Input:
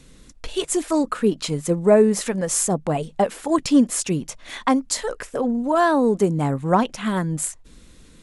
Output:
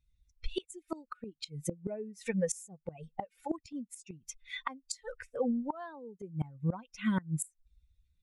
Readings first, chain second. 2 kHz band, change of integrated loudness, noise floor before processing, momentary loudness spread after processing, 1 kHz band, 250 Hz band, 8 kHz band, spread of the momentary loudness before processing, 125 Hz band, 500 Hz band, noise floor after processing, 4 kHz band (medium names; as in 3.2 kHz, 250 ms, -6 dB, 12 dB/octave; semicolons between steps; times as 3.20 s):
-14.5 dB, -17.0 dB, -49 dBFS, 13 LU, -19.5 dB, -16.5 dB, -17.0 dB, 9 LU, -12.0 dB, -19.0 dB, -80 dBFS, -15.0 dB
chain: expander on every frequency bin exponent 2; inverted gate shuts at -20 dBFS, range -24 dB